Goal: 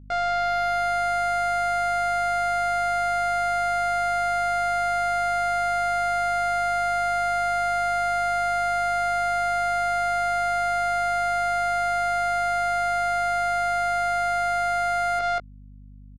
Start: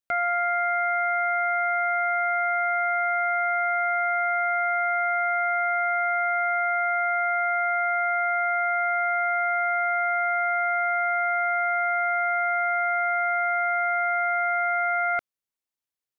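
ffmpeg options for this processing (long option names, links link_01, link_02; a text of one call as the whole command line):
ffmpeg -i in.wav -filter_complex "[0:a]lowpass=1300,asplit=2[link_01][link_02];[link_02]adelay=17,volume=-4.5dB[link_03];[link_01][link_03]amix=inputs=2:normalize=0,aecho=1:1:190:0.398,asplit=2[link_04][link_05];[link_05]volume=30dB,asoftclip=hard,volume=-30dB,volume=-11.5dB[link_06];[link_04][link_06]amix=inputs=2:normalize=0,dynaudnorm=framelen=120:gausssize=13:maxgain=9dB,aemphasis=mode=production:type=riaa,adynamicsmooth=sensitivity=1.5:basefreq=620,alimiter=limit=-18dB:level=0:latency=1,aeval=exprs='val(0)+0.00631*(sin(2*PI*50*n/s)+sin(2*PI*2*50*n/s)/2+sin(2*PI*3*50*n/s)/3+sin(2*PI*4*50*n/s)/4+sin(2*PI*5*50*n/s)/5)':channel_layout=same" out.wav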